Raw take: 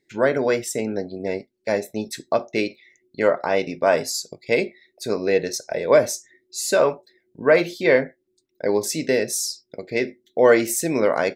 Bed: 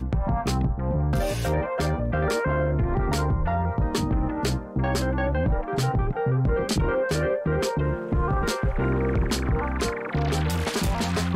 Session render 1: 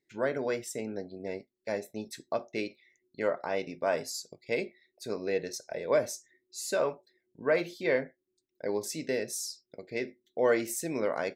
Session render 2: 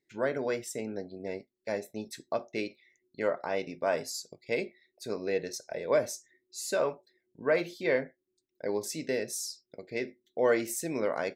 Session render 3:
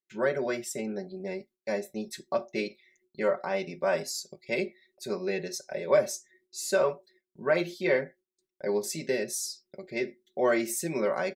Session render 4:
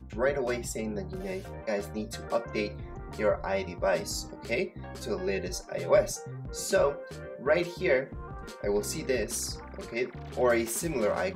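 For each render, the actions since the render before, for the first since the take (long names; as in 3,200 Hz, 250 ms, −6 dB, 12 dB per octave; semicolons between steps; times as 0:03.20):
level −11 dB
no processing that can be heard
comb filter 5.3 ms, depth 91%; noise gate with hold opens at −56 dBFS
mix in bed −17.5 dB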